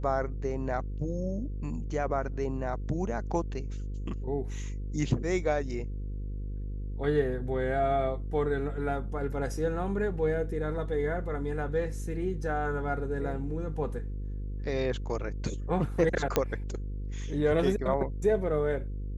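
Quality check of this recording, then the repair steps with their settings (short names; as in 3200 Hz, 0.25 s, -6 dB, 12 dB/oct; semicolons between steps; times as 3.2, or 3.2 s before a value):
buzz 50 Hz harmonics 10 -35 dBFS
16.36 pop -10 dBFS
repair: de-click; de-hum 50 Hz, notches 10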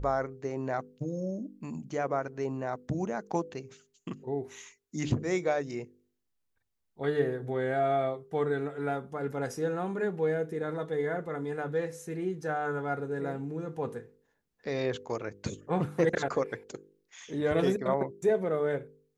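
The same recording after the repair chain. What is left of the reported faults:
none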